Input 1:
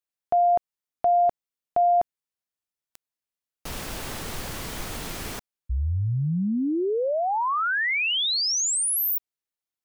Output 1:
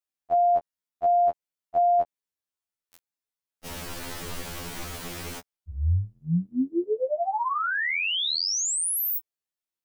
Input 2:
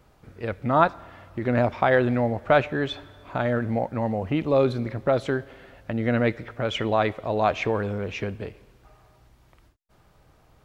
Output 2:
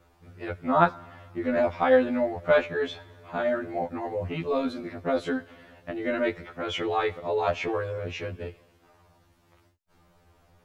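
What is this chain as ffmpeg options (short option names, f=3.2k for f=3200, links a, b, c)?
-af "afftfilt=real='re*2*eq(mod(b,4),0)':imag='im*2*eq(mod(b,4),0)':win_size=2048:overlap=0.75"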